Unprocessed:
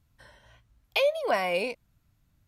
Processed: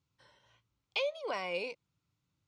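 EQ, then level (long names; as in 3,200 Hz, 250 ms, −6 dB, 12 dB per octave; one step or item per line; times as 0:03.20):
loudspeaker in its box 150–7,200 Hz, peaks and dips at 230 Hz −10 dB, 670 Hz −10 dB, 1,700 Hz −9 dB
−6.0 dB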